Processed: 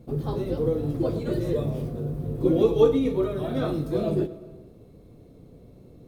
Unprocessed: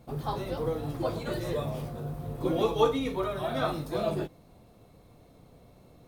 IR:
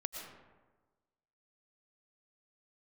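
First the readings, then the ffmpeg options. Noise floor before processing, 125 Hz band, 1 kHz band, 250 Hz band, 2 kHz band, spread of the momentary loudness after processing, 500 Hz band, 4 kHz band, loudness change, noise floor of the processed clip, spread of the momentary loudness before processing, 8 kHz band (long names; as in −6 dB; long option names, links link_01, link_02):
−57 dBFS, +6.5 dB, −5.0 dB, +8.0 dB, −4.0 dB, 11 LU, +6.0 dB, −3.5 dB, +5.5 dB, −51 dBFS, 10 LU, can't be measured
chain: -filter_complex "[0:a]lowshelf=frequency=580:width_type=q:width=1.5:gain=9.5,asplit=2[link_01][link_02];[1:a]atrim=start_sample=2205,adelay=105[link_03];[link_02][link_03]afir=irnorm=-1:irlink=0,volume=-15.5dB[link_04];[link_01][link_04]amix=inputs=2:normalize=0,volume=-3.5dB"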